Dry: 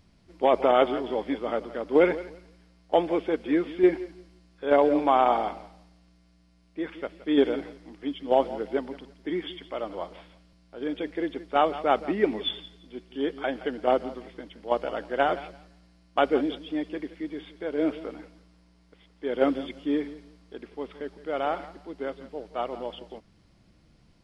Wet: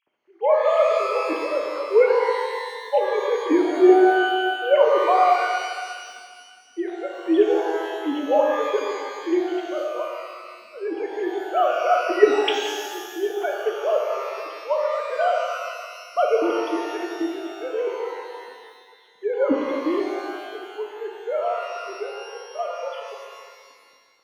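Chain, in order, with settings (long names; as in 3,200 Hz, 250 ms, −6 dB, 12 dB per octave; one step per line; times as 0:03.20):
three sine waves on the formant tracks
0:22.04–0:22.59: downward compressor, threshold −38 dBFS, peak gain reduction 8 dB
reverb with rising layers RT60 1.8 s, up +12 semitones, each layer −8 dB, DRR 0 dB
level +2.5 dB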